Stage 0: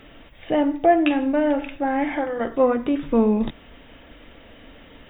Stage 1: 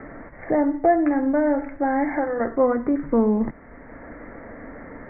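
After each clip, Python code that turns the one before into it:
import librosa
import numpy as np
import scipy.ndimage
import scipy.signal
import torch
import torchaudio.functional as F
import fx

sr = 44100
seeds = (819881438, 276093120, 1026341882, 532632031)

y = scipy.signal.sosfilt(scipy.signal.butter(16, 2100.0, 'lowpass', fs=sr, output='sos'), x)
y = fx.band_squash(y, sr, depth_pct=40)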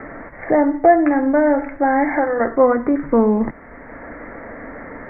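y = fx.low_shelf(x, sr, hz=420.0, db=-6.0)
y = y * librosa.db_to_amplitude(8.0)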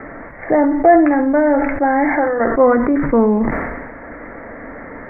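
y = fx.sustainer(x, sr, db_per_s=38.0)
y = y * librosa.db_to_amplitude(1.0)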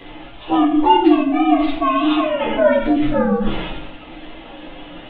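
y = fx.partial_stretch(x, sr, pct=125)
y = fx.room_shoebox(y, sr, seeds[0], volume_m3=45.0, walls='mixed', distance_m=0.56)
y = y * librosa.db_to_amplitude(-3.0)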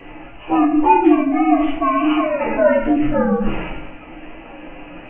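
y = fx.freq_compress(x, sr, knee_hz=1900.0, ratio=1.5)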